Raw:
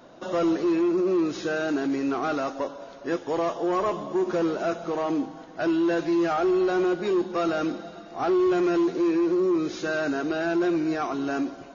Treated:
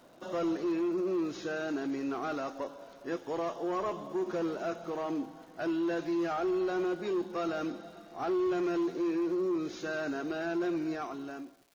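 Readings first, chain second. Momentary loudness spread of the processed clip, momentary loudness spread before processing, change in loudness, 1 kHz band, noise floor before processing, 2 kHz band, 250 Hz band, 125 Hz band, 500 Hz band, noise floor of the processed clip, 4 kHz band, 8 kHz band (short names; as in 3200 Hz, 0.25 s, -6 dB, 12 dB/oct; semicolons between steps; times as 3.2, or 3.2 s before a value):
8 LU, 8 LU, -8.0 dB, -8.0 dB, -44 dBFS, -8.0 dB, -8.0 dB, -8.0 dB, -8.0 dB, -54 dBFS, -8.0 dB, n/a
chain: ending faded out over 0.86 s; crackle 430/s -46 dBFS; gain -8 dB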